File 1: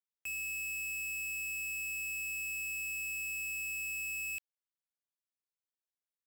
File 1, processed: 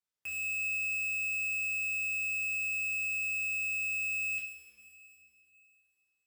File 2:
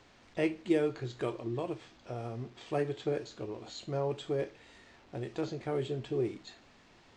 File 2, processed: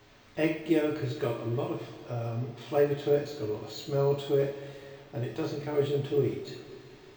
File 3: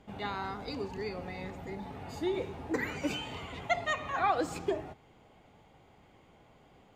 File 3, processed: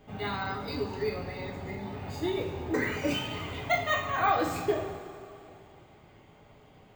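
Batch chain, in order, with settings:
two-slope reverb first 0.42 s, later 2.9 s, from -16 dB, DRR -2 dB; careless resampling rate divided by 2×, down filtered, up hold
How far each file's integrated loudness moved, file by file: +5.0, +5.5, +4.0 LU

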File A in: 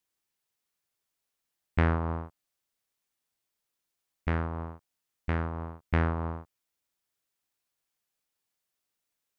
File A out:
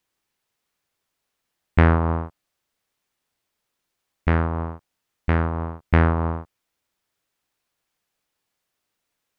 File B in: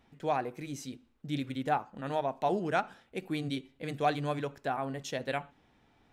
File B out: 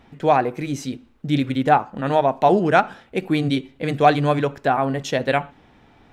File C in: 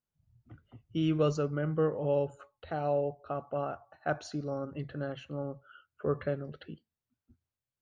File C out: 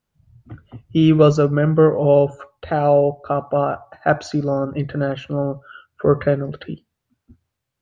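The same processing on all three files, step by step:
high shelf 4900 Hz -8 dB; normalise peaks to -2 dBFS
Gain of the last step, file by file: +9.5, +14.0, +15.5 dB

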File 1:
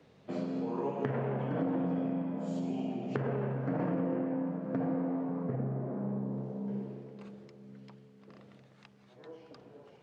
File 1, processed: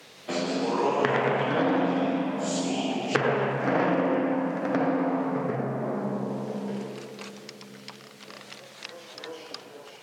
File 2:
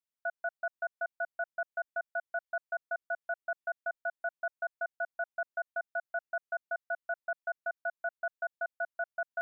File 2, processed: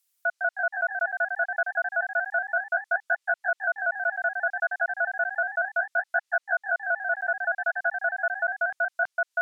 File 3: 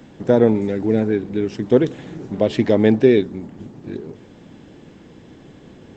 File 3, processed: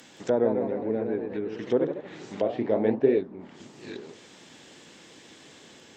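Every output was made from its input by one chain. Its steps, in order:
echoes that change speed 0.171 s, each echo +1 st, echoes 3, each echo -6 dB; tilt +4.5 dB/oct; treble ducked by the level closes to 860 Hz, closed at -22.5 dBFS; match loudness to -27 LUFS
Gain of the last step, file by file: +13.0, +8.0, -3.5 dB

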